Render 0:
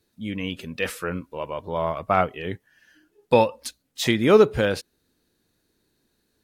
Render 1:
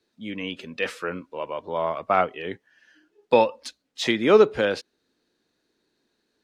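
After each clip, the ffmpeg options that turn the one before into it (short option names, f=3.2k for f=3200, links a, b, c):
-filter_complex "[0:a]acrossover=split=210 6900:gain=0.2 1 0.126[a][b][c];[a][b][c]amix=inputs=3:normalize=0"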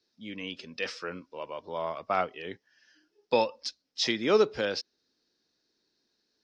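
-af "lowpass=f=5.3k:t=q:w=6.2,volume=-7.5dB"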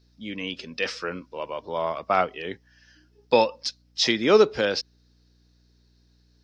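-af "aeval=exprs='val(0)+0.000501*(sin(2*PI*60*n/s)+sin(2*PI*2*60*n/s)/2+sin(2*PI*3*60*n/s)/3+sin(2*PI*4*60*n/s)/4+sin(2*PI*5*60*n/s)/5)':c=same,volume=6dB"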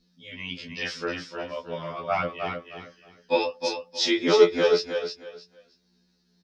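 -af "flanger=delay=15.5:depth=7.6:speed=0.65,aecho=1:1:313|626|939:0.501|0.115|0.0265,afftfilt=real='re*2*eq(mod(b,4),0)':imag='im*2*eq(mod(b,4),0)':win_size=2048:overlap=0.75,volume=3dB"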